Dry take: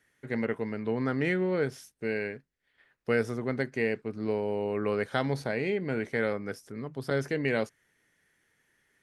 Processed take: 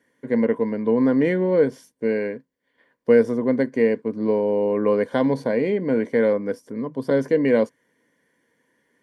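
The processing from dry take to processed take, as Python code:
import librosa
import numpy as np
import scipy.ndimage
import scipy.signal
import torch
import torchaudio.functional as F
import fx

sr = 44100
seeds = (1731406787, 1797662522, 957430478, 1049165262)

y = fx.notch_comb(x, sr, f0_hz=1300.0)
y = fx.small_body(y, sr, hz=(260.0, 490.0, 980.0), ring_ms=25, db=14)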